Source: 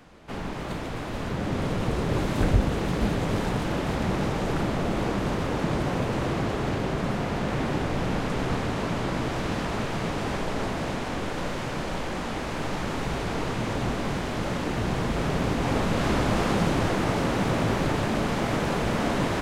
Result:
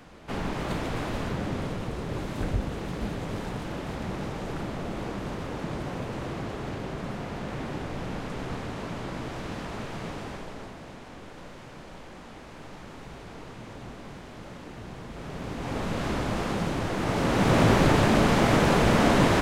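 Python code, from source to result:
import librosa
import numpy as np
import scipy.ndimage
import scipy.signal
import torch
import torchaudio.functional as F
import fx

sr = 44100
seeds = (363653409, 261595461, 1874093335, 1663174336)

y = fx.gain(x, sr, db=fx.line((1.05, 2.0), (1.9, -7.0), (10.12, -7.0), (10.8, -14.0), (15.08, -14.0), (15.88, -5.0), (16.88, -5.0), (17.6, 5.0)))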